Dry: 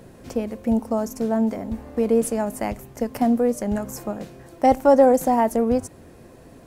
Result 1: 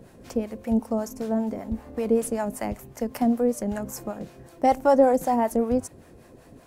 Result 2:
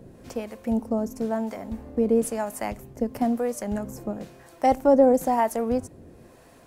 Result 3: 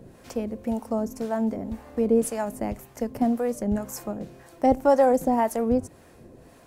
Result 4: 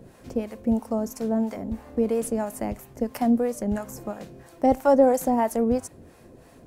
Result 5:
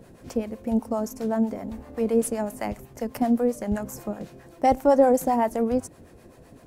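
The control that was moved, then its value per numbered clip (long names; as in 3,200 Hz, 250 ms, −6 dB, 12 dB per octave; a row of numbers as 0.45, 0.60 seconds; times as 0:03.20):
two-band tremolo in antiphase, speed: 5.2, 1, 1.9, 3, 7.8 Hertz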